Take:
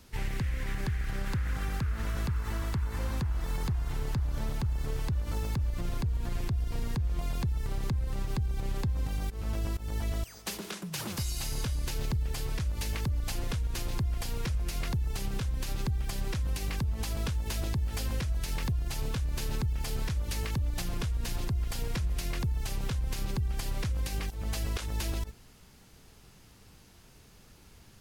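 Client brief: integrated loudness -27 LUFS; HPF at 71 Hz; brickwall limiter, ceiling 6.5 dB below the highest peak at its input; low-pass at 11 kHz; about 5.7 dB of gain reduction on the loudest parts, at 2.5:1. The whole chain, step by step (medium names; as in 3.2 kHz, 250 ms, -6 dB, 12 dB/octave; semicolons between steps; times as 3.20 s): high-pass 71 Hz; low-pass 11 kHz; compression 2.5:1, threshold -36 dBFS; trim +14 dB; peak limiter -17 dBFS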